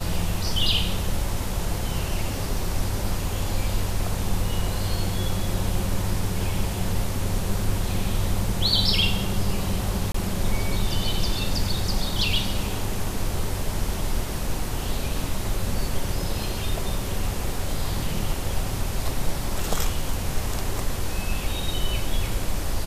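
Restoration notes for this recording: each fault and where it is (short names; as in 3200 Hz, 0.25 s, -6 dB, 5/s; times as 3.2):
10.12–10.14 gap 24 ms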